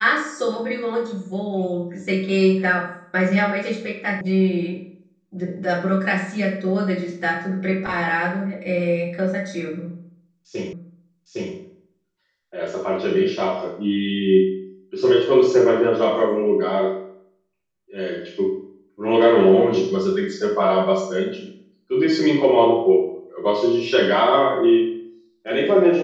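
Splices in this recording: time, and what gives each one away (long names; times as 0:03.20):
0:04.21: cut off before it has died away
0:10.73: the same again, the last 0.81 s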